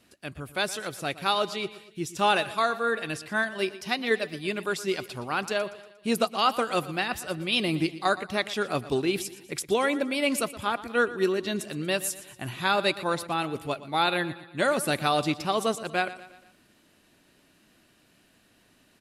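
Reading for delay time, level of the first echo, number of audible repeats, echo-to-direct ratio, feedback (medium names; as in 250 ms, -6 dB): 118 ms, -16.0 dB, 4, -15.0 dB, 50%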